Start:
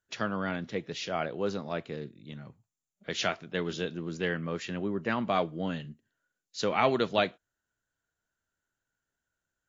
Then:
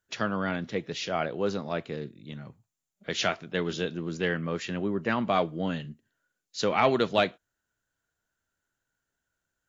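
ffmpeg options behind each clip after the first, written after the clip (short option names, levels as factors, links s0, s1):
-af "acontrast=89,volume=0.596"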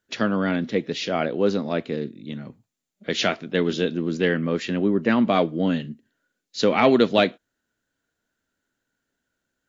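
-af "equalizer=f=250:t=o:w=1:g=11,equalizer=f=500:t=o:w=1:g=5,equalizer=f=2000:t=o:w=1:g=4,equalizer=f=4000:t=o:w=1:g=5"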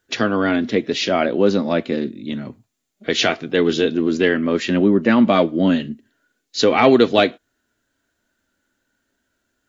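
-filter_complex "[0:a]asplit=2[s0][s1];[s1]alimiter=limit=0.158:level=0:latency=1:release=223,volume=1[s2];[s0][s2]amix=inputs=2:normalize=0,flanger=delay=2.5:depth=1:regen=-54:speed=0.29:shape=triangular,volume=1.88"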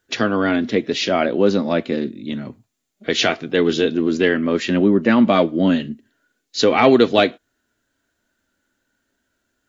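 -af anull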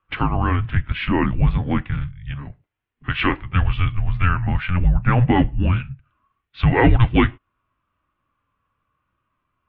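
-af "highpass=f=140:w=0.5412,highpass=f=140:w=1.3066,highpass=f=230:t=q:w=0.5412,highpass=f=230:t=q:w=1.307,lowpass=f=3100:t=q:w=0.5176,lowpass=f=3100:t=q:w=0.7071,lowpass=f=3100:t=q:w=1.932,afreqshift=-360"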